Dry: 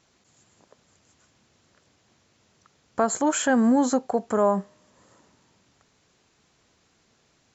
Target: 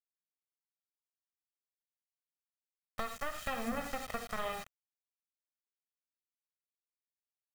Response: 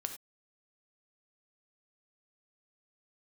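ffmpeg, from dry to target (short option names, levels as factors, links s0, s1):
-filter_complex "[0:a]flanger=delay=6.1:depth=8.7:regen=79:speed=0.86:shape=sinusoidal,aeval=exprs='0.237*(cos(1*acos(clip(val(0)/0.237,-1,1)))-cos(1*PI/2))+0.0531*(cos(7*acos(clip(val(0)/0.237,-1,1)))-cos(7*PI/2))':c=same,lowpass=4800[s0];[1:a]atrim=start_sample=2205,afade=t=out:st=0.15:d=0.01,atrim=end_sample=7056[s1];[s0][s1]afir=irnorm=-1:irlink=0,acrossover=split=3400[s2][s3];[s3]alimiter=level_in=8.91:limit=0.0631:level=0:latency=1:release=85,volume=0.112[s4];[s2][s4]amix=inputs=2:normalize=0,asplit=2[s5][s6];[s6]adelay=73,lowpass=f=860:p=1,volume=0.141,asplit=2[s7][s8];[s8]adelay=73,lowpass=f=860:p=1,volume=0.43,asplit=2[s9][s10];[s10]adelay=73,lowpass=f=860:p=1,volume=0.43,asplit=2[s11][s12];[s12]adelay=73,lowpass=f=860:p=1,volume=0.43[s13];[s5][s7][s9][s11][s13]amix=inputs=5:normalize=0,acrusher=bits=6:mix=0:aa=0.000001,equalizer=f=450:w=0.76:g=-7.5,aecho=1:1:1.6:0.65,acompressor=threshold=0.0316:ratio=6,volume=0.75"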